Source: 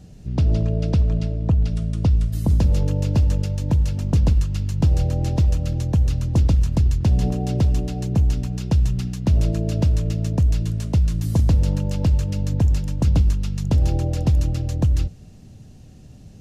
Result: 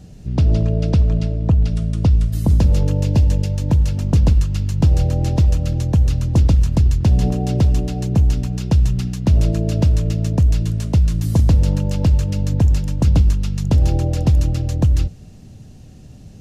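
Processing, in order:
0:03.05–0:03.53: parametric band 1,300 Hz −9.5 dB 0.31 octaves
level +3.5 dB

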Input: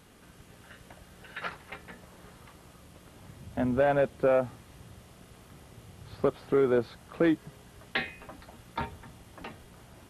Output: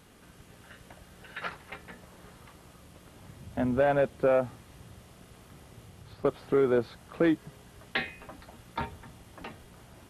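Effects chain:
0:05.84–0:06.25: downward compressor 4 to 1, threshold −46 dBFS, peak gain reduction 16 dB

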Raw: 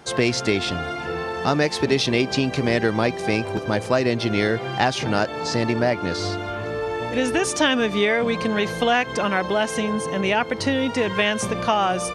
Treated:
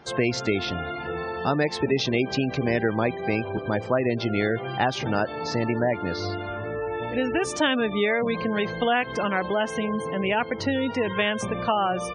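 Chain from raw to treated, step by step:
high-shelf EQ 9,100 Hz −11.5 dB
gate on every frequency bin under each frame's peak −25 dB strong
level −3 dB

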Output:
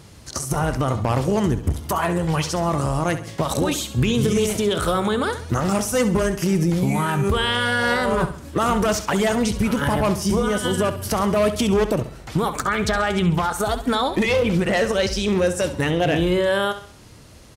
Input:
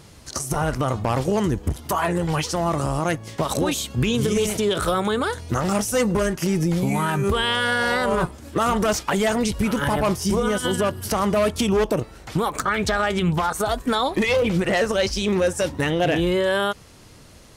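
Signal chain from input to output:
high-pass filter 85 Hz 6 dB per octave
low-shelf EQ 110 Hz +9.5 dB
repeating echo 67 ms, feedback 40%, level −12 dB

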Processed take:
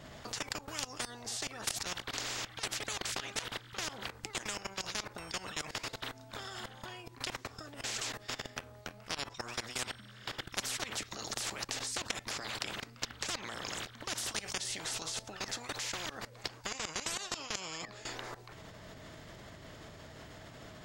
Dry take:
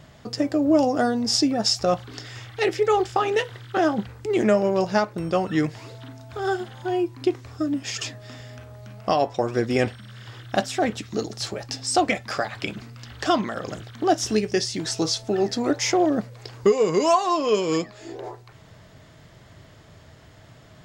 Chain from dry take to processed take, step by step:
output level in coarse steps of 20 dB
every bin compressed towards the loudest bin 10 to 1
level −4.5 dB

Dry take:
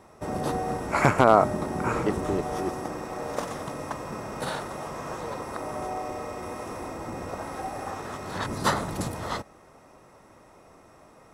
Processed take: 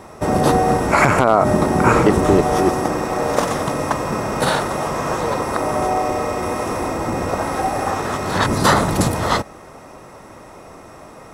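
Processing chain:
boost into a limiter +14.5 dB
level −1 dB

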